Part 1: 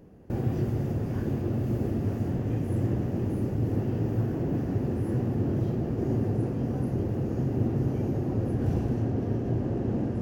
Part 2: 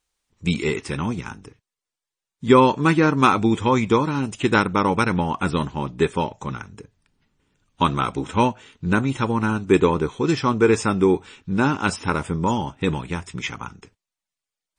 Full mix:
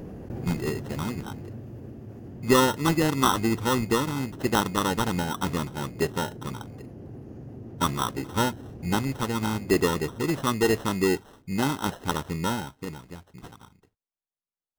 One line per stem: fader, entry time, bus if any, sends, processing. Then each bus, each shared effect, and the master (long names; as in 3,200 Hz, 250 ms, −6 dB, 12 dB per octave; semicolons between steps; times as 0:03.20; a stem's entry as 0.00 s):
−7.5 dB, 0.00 s, no send, echo send −16.5 dB, envelope flattener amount 70%; automatic ducking −11 dB, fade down 1.95 s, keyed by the second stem
0:12.52 −6 dB → 0:12.91 −14.5 dB, 0.00 s, no send, no echo send, running median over 5 samples; decimation without filtering 19×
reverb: not used
echo: repeating echo 337 ms, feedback 53%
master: no processing